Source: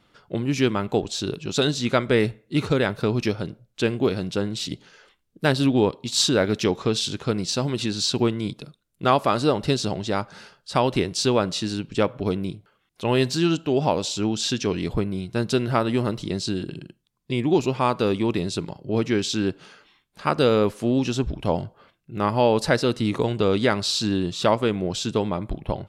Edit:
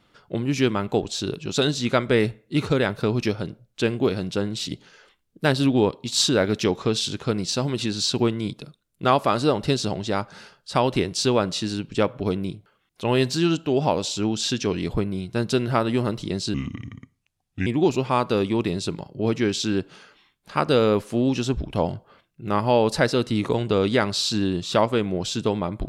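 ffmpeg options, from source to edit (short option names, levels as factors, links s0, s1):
-filter_complex "[0:a]asplit=3[s0][s1][s2];[s0]atrim=end=16.544[s3];[s1]atrim=start=16.54:end=17.36,asetpts=PTS-STARTPTS,asetrate=32193,aresample=44100[s4];[s2]atrim=start=17.356[s5];[s3][s4]acrossfade=d=0.004:c1=hsin:c2=hsin[s6];[s6][s5]acrossfade=d=0.004:c1=hsin:c2=hsin"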